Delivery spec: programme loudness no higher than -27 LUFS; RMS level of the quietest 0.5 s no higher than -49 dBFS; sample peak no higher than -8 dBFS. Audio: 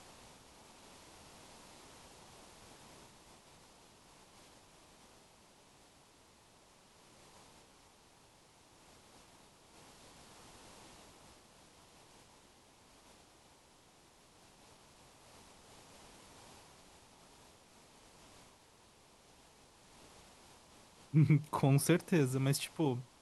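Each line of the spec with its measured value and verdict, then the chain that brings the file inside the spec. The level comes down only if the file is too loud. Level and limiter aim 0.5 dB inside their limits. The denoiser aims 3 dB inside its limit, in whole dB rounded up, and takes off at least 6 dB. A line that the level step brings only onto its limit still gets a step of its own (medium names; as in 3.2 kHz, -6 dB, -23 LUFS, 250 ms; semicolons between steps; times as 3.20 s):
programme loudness -32.0 LUFS: pass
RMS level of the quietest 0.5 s -64 dBFS: pass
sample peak -16.0 dBFS: pass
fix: none needed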